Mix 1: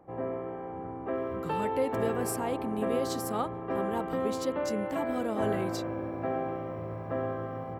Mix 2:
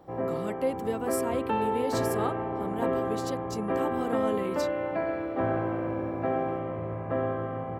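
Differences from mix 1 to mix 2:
speech: entry -1.15 s; background +3.5 dB

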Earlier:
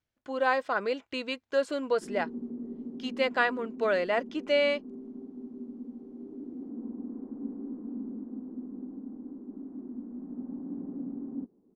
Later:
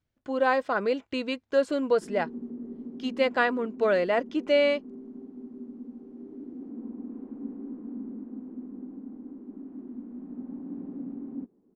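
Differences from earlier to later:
speech: add bass shelf 450 Hz +8.5 dB; background: remove low-pass 1.3 kHz 12 dB/octave

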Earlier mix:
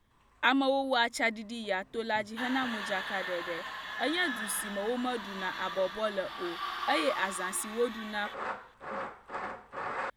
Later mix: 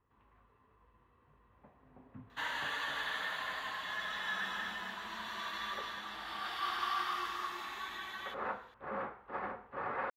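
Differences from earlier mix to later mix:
speech: muted; first sound: add distance through air 440 m

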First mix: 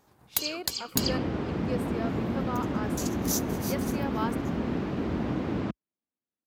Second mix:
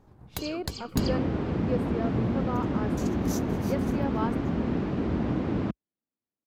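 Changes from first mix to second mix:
second sound: add tilt EQ +2.5 dB/octave; master: add tilt EQ -3.5 dB/octave

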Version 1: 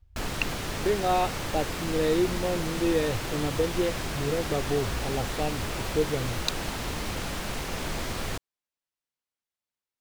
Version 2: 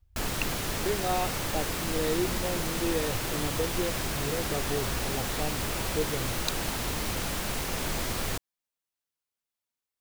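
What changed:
speech -5.0 dB; master: add treble shelf 8.8 kHz +10 dB

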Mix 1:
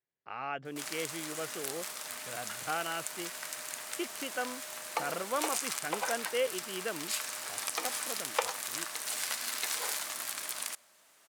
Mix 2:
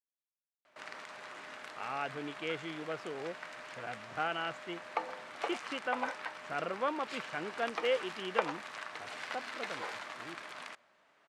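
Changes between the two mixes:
speech: entry +1.50 s; background: add low-pass 2.3 kHz 12 dB/octave

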